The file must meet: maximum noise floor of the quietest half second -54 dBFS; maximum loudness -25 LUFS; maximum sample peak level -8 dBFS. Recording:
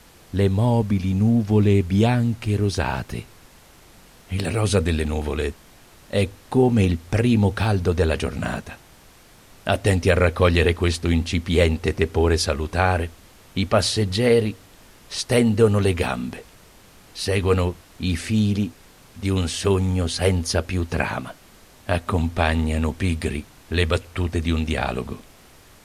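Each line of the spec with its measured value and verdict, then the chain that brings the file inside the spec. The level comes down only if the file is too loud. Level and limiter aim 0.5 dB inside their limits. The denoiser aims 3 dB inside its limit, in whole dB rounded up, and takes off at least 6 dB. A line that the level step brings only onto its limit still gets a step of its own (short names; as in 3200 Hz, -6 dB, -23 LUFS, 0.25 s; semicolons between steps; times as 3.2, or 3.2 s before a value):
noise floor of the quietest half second -50 dBFS: fail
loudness -22.0 LUFS: fail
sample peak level -5.0 dBFS: fail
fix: denoiser 6 dB, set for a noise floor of -50 dBFS; gain -3.5 dB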